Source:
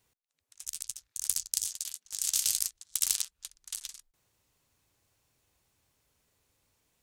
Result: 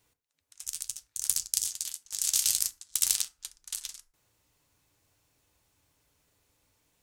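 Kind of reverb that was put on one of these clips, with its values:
feedback delay network reverb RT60 0.39 s, low-frequency decay 0.9×, high-frequency decay 0.55×, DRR 9 dB
level +2 dB

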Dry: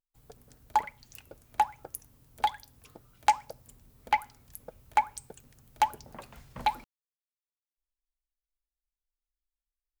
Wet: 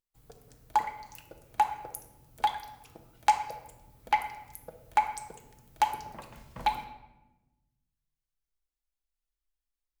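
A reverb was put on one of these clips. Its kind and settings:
rectangular room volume 480 cubic metres, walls mixed, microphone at 0.67 metres
level −1 dB

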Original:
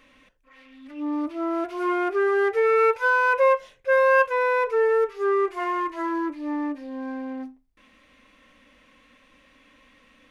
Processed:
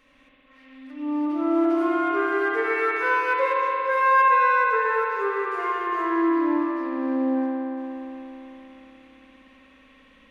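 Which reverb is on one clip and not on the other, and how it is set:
spring reverb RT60 3.7 s, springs 57 ms, chirp 35 ms, DRR −5.5 dB
level −4.5 dB

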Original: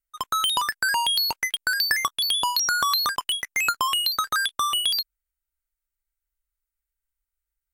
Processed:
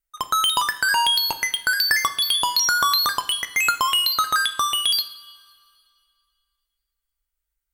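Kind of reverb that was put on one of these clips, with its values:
coupled-rooms reverb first 0.59 s, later 2.4 s, from −17 dB, DRR 8.5 dB
level +2.5 dB

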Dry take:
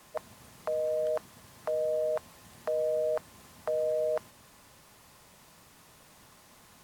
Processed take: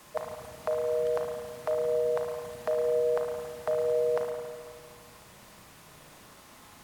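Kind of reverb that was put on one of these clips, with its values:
spring reverb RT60 1.8 s, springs 34/54 ms, chirp 20 ms, DRR 1.5 dB
level +3 dB

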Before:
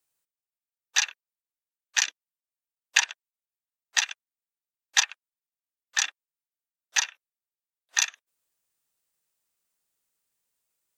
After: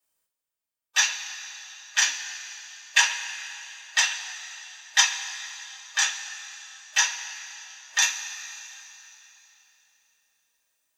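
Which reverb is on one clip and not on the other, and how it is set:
coupled-rooms reverb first 0.22 s, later 3.4 s, from −19 dB, DRR −8 dB
level −4.5 dB

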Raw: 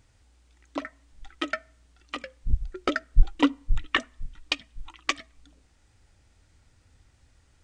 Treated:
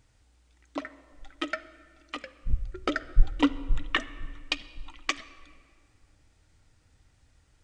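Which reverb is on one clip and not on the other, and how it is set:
rectangular room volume 4,000 cubic metres, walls mixed, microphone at 0.5 metres
level −2.5 dB

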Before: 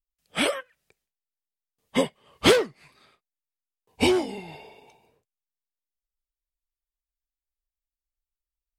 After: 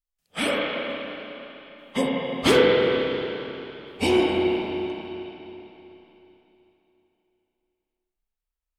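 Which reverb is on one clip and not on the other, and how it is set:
spring reverb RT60 3.4 s, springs 30/34/44 ms, chirp 50 ms, DRR −4.5 dB
level −3 dB

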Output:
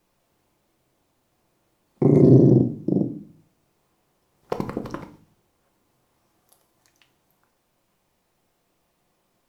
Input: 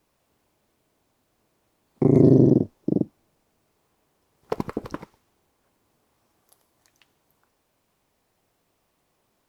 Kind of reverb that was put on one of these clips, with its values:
rectangular room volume 340 cubic metres, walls furnished, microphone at 0.87 metres

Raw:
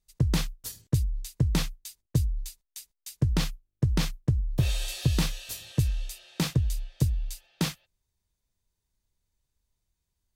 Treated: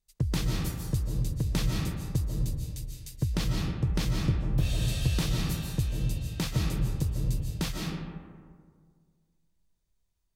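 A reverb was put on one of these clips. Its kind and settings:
comb and all-pass reverb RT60 1.9 s, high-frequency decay 0.4×, pre-delay 105 ms, DRR −1 dB
level −4 dB

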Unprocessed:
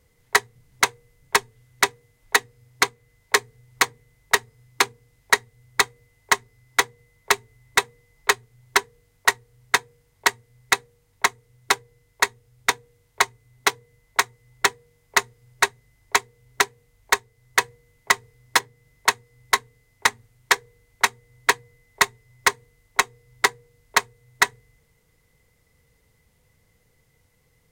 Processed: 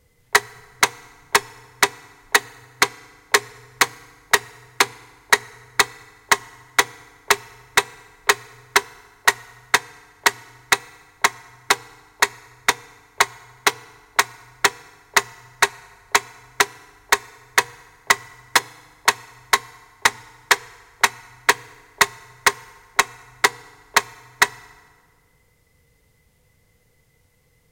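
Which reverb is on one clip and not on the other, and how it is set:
feedback delay network reverb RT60 1.8 s, low-frequency decay 1.35×, high-frequency decay 0.7×, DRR 20 dB
level +2.5 dB

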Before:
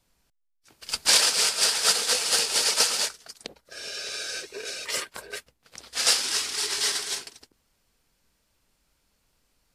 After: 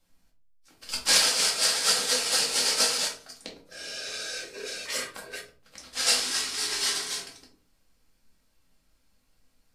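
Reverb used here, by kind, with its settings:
rectangular room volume 240 cubic metres, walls furnished, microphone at 2.2 metres
level −5 dB

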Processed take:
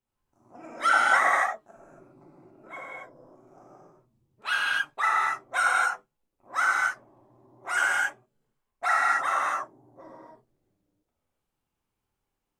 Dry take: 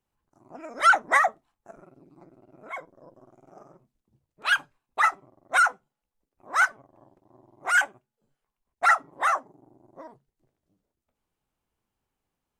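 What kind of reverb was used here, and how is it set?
reverb whose tail is shaped and stops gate 300 ms flat, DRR −6.5 dB
level −7.5 dB

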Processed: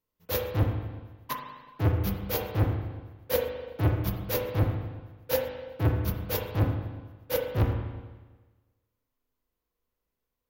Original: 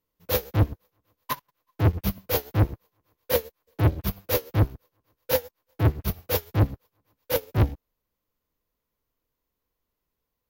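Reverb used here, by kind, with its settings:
spring reverb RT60 1.3 s, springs 36/40 ms, chirp 60 ms, DRR 2 dB
level −5 dB

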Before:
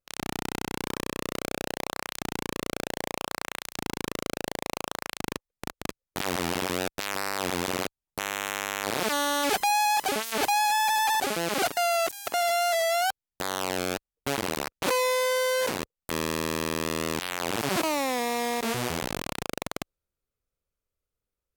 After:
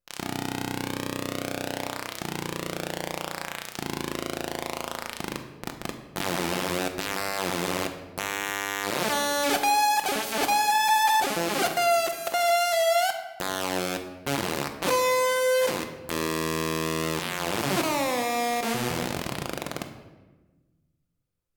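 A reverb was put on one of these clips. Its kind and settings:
rectangular room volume 780 cubic metres, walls mixed, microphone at 0.84 metres

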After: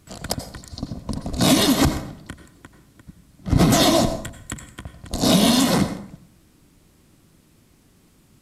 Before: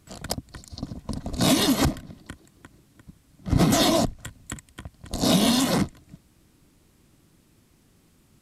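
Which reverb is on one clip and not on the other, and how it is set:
dense smooth reverb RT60 0.61 s, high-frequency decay 0.65×, pre-delay 75 ms, DRR 9.5 dB
level +3.5 dB

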